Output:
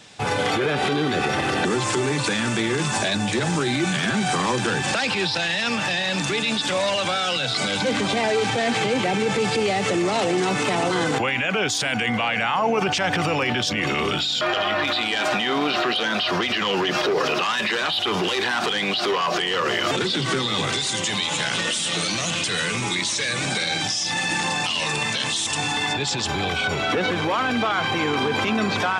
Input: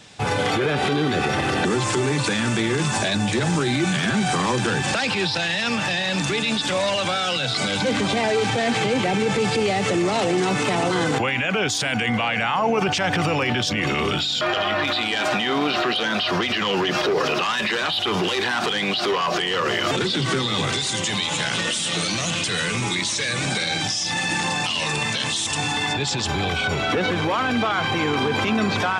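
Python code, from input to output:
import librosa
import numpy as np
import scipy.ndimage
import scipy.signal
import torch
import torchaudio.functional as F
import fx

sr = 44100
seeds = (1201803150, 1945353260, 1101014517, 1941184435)

y = fx.low_shelf(x, sr, hz=140.0, db=-6.0)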